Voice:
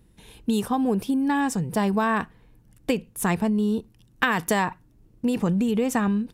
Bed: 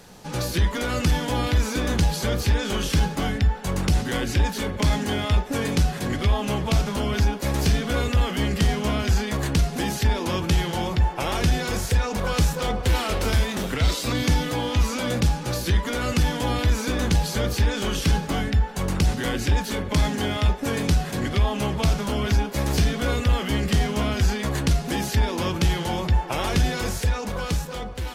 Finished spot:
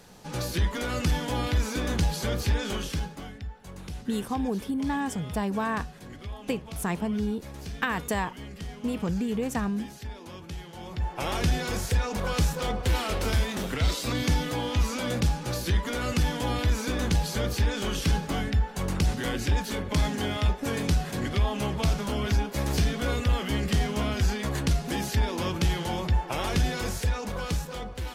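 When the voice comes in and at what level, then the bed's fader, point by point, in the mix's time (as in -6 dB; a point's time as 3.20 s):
3.60 s, -6.0 dB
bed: 2.69 s -4.5 dB
3.36 s -17.5 dB
10.72 s -17.5 dB
11.24 s -4 dB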